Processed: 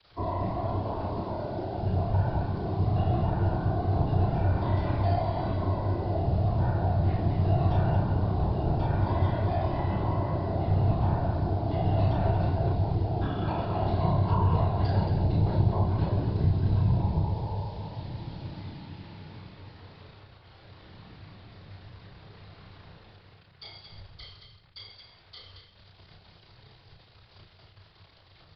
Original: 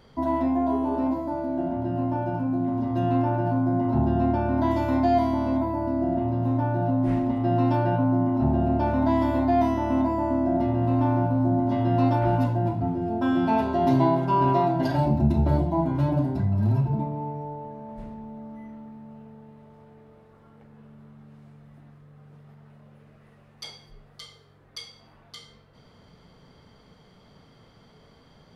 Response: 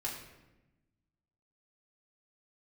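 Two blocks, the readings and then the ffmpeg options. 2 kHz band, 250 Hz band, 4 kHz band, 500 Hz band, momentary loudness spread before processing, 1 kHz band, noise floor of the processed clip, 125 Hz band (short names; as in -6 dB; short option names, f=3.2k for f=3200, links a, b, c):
-5.0 dB, -9.5 dB, -1.0 dB, -5.5 dB, 18 LU, -6.0 dB, -57 dBFS, +1.0 dB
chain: -filter_complex "[0:a]acrusher=bits=7:mix=0:aa=0.000001,asplit=2[a][b];[b]lowshelf=f=330:g=11.5[c];[1:a]atrim=start_sample=2205[d];[c][d]afir=irnorm=-1:irlink=0,volume=-7.5dB[e];[a][e]amix=inputs=2:normalize=0,afftfilt=real='hypot(re,im)*cos(2*PI*random(0))':imag='hypot(re,im)*sin(2*PI*random(1))':win_size=512:overlap=0.75,acrossover=split=120|240|1400[f][g][h][i];[f]acompressor=threshold=-32dB:ratio=4[j];[g]acompressor=threshold=-30dB:ratio=4[k];[h]acompressor=threshold=-30dB:ratio=4[l];[i]acompressor=threshold=-46dB:ratio=4[m];[j][k][l][m]amix=inputs=4:normalize=0,bandreject=f=123.7:t=h:w=4,bandreject=f=247.4:t=h:w=4,bandreject=f=371.1:t=h:w=4,bandreject=f=494.8:t=h:w=4,bandreject=f=618.5:t=h:w=4,bandreject=f=742.2:t=h:w=4,bandreject=f=865.9:t=h:w=4,bandreject=f=989.6:t=h:w=4,bandreject=f=1.1133k:t=h:w=4,bandreject=f=1.237k:t=h:w=4,bandreject=f=1.3607k:t=h:w=4,bandreject=f=1.4844k:t=h:w=4,bandreject=f=1.6081k:t=h:w=4,bandreject=f=1.7318k:t=h:w=4,bandreject=f=1.8555k:t=h:w=4,bandreject=f=1.9792k:t=h:w=4,bandreject=f=2.1029k:t=h:w=4,bandreject=f=2.2266k:t=h:w=4,bandreject=f=2.3503k:t=h:w=4,bandreject=f=2.474k:t=h:w=4,bandreject=f=2.5977k:t=h:w=4,bandreject=f=2.7214k:t=h:w=4,bandreject=f=2.8451k:t=h:w=4,bandreject=f=2.9688k:t=h:w=4,bandreject=f=3.0925k:t=h:w=4,bandreject=f=3.2162k:t=h:w=4,bandreject=f=3.3399k:t=h:w=4,bandreject=f=3.4636k:t=h:w=4,bandreject=f=3.5873k:t=h:w=4,bandreject=f=3.711k:t=h:w=4,bandreject=f=3.8347k:t=h:w=4,bandreject=f=3.9584k:t=h:w=4,bandreject=f=4.0821k:t=h:w=4,bandreject=f=4.2058k:t=h:w=4,bandreject=f=4.3295k:t=h:w=4,aresample=11025,aresample=44100,equalizer=f=100:t=o:w=0.67:g=11,equalizer=f=250:t=o:w=0.67:g=-12,equalizer=f=4k:t=o:w=0.67:g=6,aecho=1:1:32.07|224.5:0.708|0.501,volume=-1.5dB"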